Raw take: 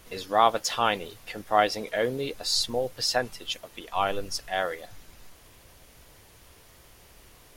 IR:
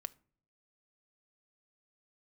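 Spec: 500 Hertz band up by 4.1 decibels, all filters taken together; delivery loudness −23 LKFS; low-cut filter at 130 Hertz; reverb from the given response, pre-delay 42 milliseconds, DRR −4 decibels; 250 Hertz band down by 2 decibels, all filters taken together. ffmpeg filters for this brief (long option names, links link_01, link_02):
-filter_complex "[0:a]highpass=130,equalizer=frequency=250:width_type=o:gain=-4.5,equalizer=frequency=500:width_type=o:gain=6,asplit=2[link_01][link_02];[1:a]atrim=start_sample=2205,adelay=42[link_03];[link_02][link_03]afir=irnorm=-1:irlink=0,volume=7dB[link_04];[link_01][link_04]amix=inputs=2:normalize=0,volume=-3.5dB"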